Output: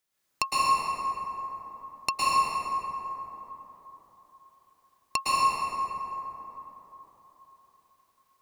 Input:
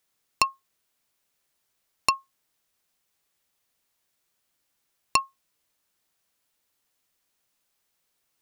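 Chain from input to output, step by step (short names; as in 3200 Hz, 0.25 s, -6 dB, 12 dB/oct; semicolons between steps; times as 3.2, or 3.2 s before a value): plate-style reverb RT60 4.1 s, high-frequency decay 0.35×, pre-delay 0.1 s, DRR -9.5 dB; gain -6.5 dB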